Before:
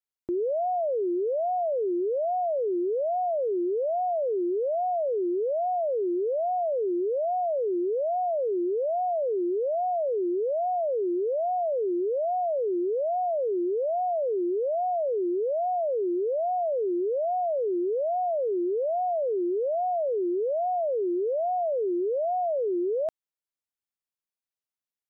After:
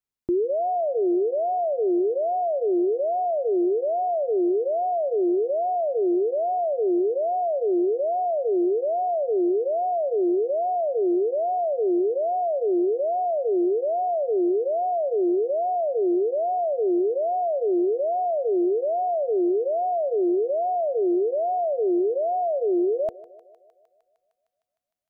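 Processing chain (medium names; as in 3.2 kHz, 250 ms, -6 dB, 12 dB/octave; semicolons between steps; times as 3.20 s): bass shelf 430 Hz +9.5 dB; band-stop 510 Hz, Q 12; on a send: thinning echo 153 ms, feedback 84%, high-pass 570 Hz, level -17 dB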